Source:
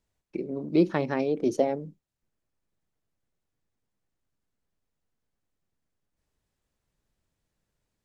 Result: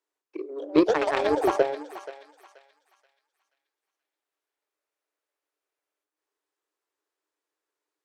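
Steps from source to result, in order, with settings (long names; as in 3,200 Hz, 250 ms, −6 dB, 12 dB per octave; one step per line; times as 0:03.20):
Chebyshev high-pass with heavy ripple 290 Hz, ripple 6 dB
delay with pitch and tempo change per echo 347 ms, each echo +6 semitones, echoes 2
harmonic generator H 2 −44 dB, 3 −17 dB, 7 −31 dB, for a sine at −14.5 dBFS
on a send: feedback echo with a high-pass in the loop 480 ms, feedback 36%, high-pass 1,100 Hz, level −11 dB
on the sum: level +9 dB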